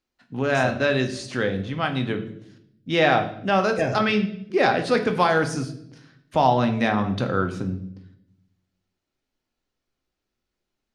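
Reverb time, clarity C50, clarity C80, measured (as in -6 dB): 0.75 s, 11.0 dB, 14.5 dB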